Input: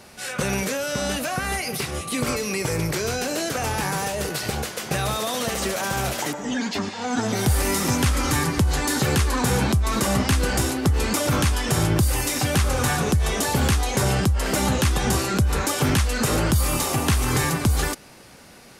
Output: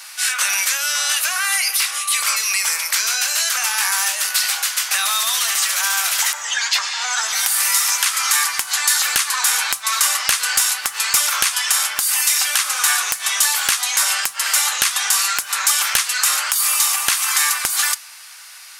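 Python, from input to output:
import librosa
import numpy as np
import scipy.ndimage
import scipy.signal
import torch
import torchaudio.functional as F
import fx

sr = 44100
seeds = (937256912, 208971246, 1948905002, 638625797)

p1 = scipy.signal.sosfilt(scipy.signal.butter(4, 1100.0, 'highpass', fs=sr, output='sos'), x)
p2 = fx.high_shelf(p1, sr, hz=3500.0, db=7.0)
p3 = fx.rider(p2, sr, range_db=10, speed_s=0.5)
p4 = p2 + (p3 * 10.0 ** (2.0 / 20.0))
p5 = (np.mod(10.0 ** (0.5 / 20.0) * p4 + 1.0, 2.0) - 1.0) / 10.0 ** (0.5 / 20.0)
p6 = fx.rev_double_slope(p5, sr, seeds[0], early_s=0.44, late_s=4.4, knee_db=-28, drr_db=19.5)
y = p6 * 10.0 ** (-1.0 / 20.0)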